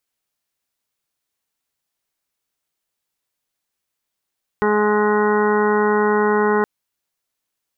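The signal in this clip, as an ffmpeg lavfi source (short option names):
-f lavfi -i "aevalsrc='0.0841*sin(2*PI*210*t)+0.15*sin(2*PI*420*t)+0.0158*sin(2*PI*630*t)+0.0708*sin(2*PI*840*t)+0.0668*sin(2*PI*1050*t)+0.0335*sin(2*PI*1260*t)+0.0531*sin(2*PI*1470*t)+0.00944*sin(2*PI*1680*t)+0.0376*sin(2*PI*1890*t)':d=2.02:s=44100"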